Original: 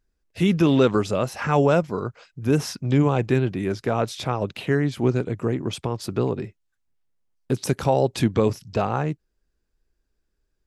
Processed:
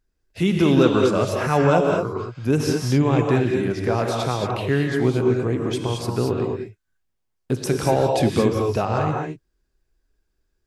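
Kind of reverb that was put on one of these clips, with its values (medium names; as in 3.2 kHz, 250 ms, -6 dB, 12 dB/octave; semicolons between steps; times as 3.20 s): gated-style reverb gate 250 ms rising, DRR 0.5 dB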